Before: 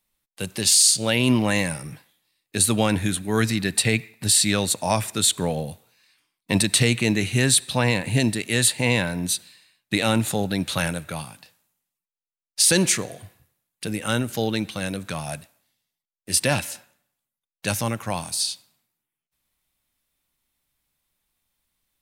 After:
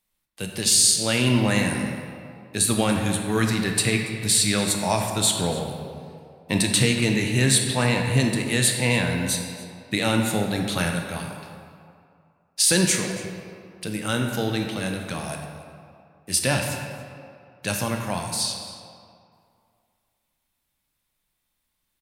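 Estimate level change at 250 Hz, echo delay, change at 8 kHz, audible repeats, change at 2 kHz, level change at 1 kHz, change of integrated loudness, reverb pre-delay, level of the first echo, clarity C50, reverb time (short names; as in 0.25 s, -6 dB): 0.0 dB, 0.282 s, -1.0 dB, 1, 0.0 dB, +0.5 dB, -0.5 dB, 13 ms, -19.0 dB, 4.0 dB, 2.3 s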